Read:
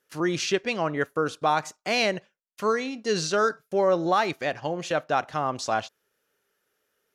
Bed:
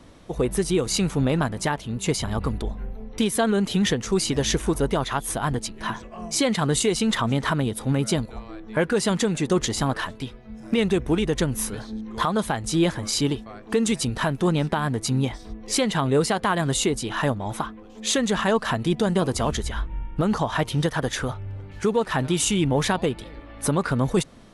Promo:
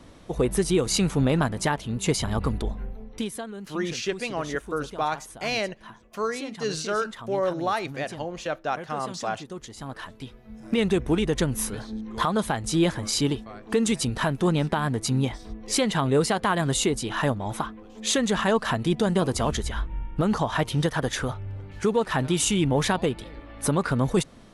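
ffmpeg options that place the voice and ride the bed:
-filter_complex "[0:a]adelay=3550,volume=0.668[s0];[1:a]volume=5.96,afade=t=out:st=2.71:d=0.76:silence=0.149624,afade=t=in:st=9.75:d=1.14:silence=0.16788[s1];[s0][s1]amix=inputs=2:normalize=0"

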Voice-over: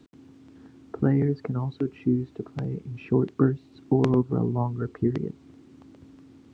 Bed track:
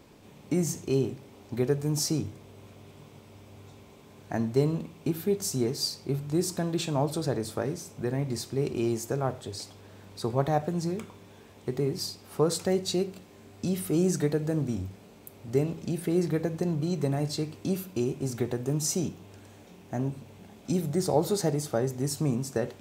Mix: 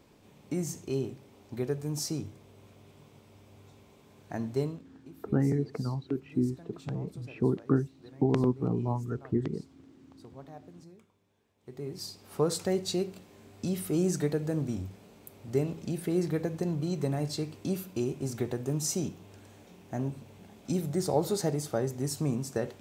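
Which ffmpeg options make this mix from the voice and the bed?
-filter_complex "[0:a]adelay=4300,volume=0.596[s0];[1:a]volume=5.01,afade=t=out:st=4.62:d=0.21:silence=0.149624,afade=t=in:st=11.58:d=0.78:silence=0.105925[s1];[s0][s1]amix=inputs=2:normalize=0"

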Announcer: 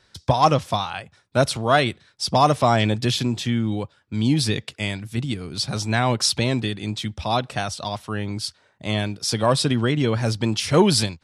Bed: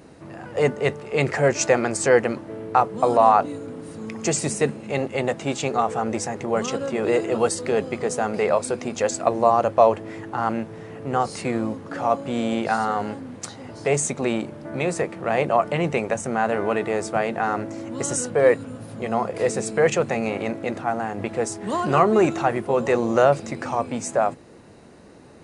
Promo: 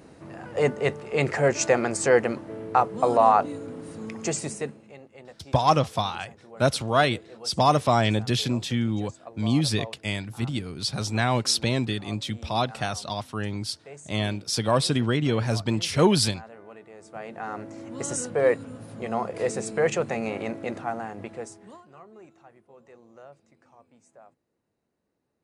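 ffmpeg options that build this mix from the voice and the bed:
-filter_complex "[0:a]adelay=5250,volume=0.708[s0];[1:a]volume=6.31,afade=t=out:st=4.03:d=0.94:silence=0.0944061,afade=t=in:st=16.97:d=1.16:silence=0.11885,afade=t=out:st=20.73:d=1.12:silence=0.0446684[s1];[s0][s1]amix=inputs=2:normalize=0"

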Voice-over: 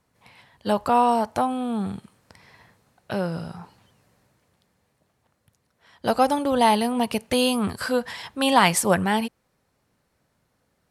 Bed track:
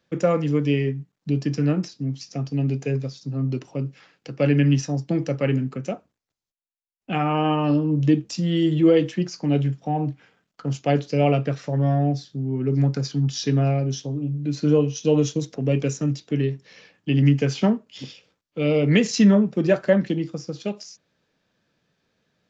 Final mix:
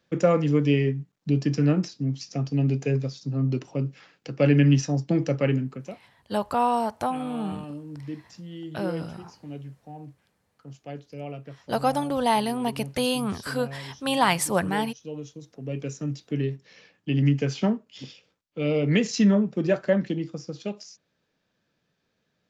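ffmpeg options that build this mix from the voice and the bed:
-filter_complex "[0:a]adelay=5650,volume=0.631[s0];[1:a]volume=4.73,afade=t=out:st=5.38:d=0.66:silence=0.133352,afade=t=in:st=15.39:d=1.02:silence=0.211349[s1];[s0][s1]amix=inputs=2:normalize=0"

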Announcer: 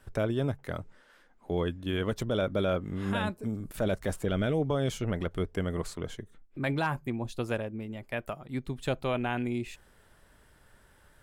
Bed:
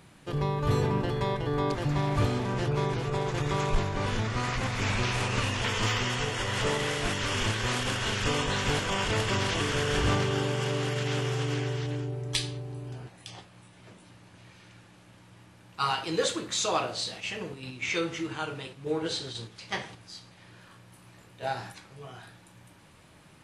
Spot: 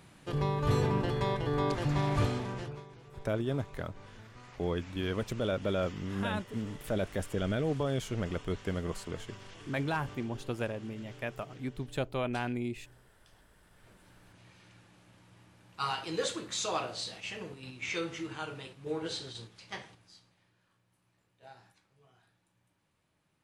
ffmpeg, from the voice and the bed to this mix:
-filter_complex "[0:a]adelay=3100,volume=0.708[s0];[1:a]volume=5.62,afade=t=out:st=2.15:d=0.69:silence=0.0944061,afade=t=in:st=13.43:d=0.98:silence=0.141254,afade=t=out:st=19.22:d=1.32:silence=0.16788[s1];[s0][s1]amix=inputs=2:normalize=0"

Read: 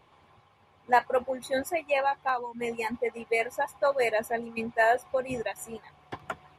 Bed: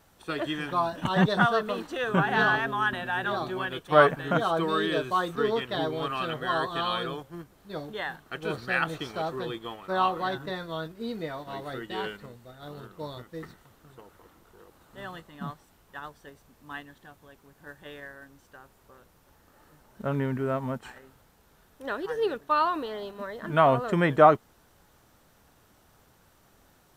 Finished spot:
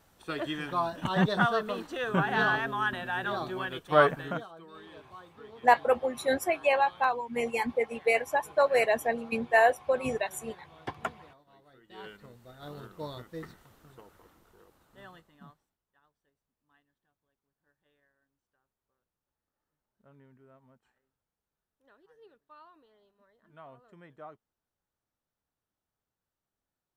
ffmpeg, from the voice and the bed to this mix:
-filter_complex "[0:a]adelay=4750,volume=1.19[s0];[1:a]volume=8.41,afade=t=out:st=4.2:d=0.27:silence=0.1,afade=t=in:st=11.83:d=0.83:silence=0.0841395,afade=t=out:st=13.74:d=2.03:silence=0.0375837[s1];[s0][s1]amix=inputs=2:normalize=0"

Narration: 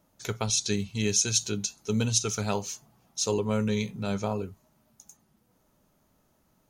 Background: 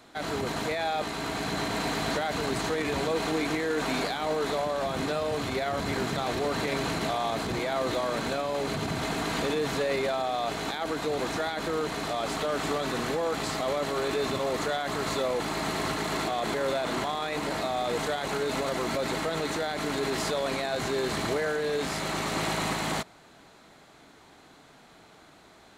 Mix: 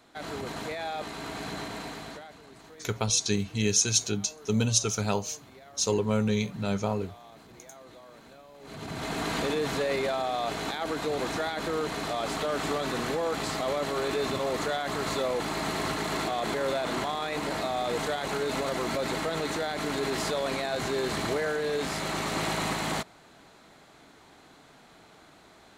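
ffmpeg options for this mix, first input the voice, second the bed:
-filter_complex "[0:a]adelay=2600,volume=1.12[s0];[1:a]volume=6.31,afade=t=out:st=1.48:d=0.9:silence=0.149624,afade=t=in:st=8.6:d=0.65:silence=0.0891251[s1];[s0][s1]amix=inputs=2:normalize=0"

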